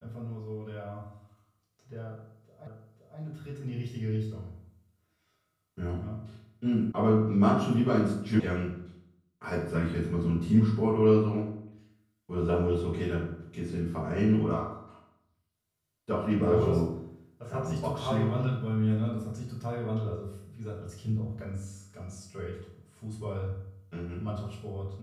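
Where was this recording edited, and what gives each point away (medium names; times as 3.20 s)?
2.67 s: repeat of the last 0.52 s
6.92 s: sound stops dead
8.40 s: sound stops dead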